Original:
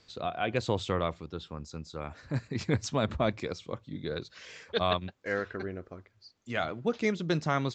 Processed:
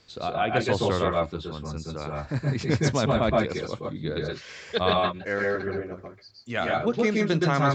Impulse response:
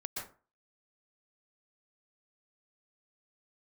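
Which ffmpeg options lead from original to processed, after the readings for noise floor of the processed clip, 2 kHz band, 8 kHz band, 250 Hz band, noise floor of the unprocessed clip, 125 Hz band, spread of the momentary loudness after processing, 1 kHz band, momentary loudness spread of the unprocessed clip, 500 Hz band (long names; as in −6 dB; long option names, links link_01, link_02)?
−49 dBFS, +6.5 dB, +5.5 dB, +6.5 dB, −67 dBFS, +6.5 dB, 12 LU, +7.0 dB, 13 LU, +7.0 dB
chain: -filter_complex "[1:a]atrim=start_sample=2205,afade=type=out:start_time=0.2:duration=0.01,atrim=end_sample=9261[link_01];[0:a][link_01]afir=irnorm=-1:irlink=0,volume=7dB"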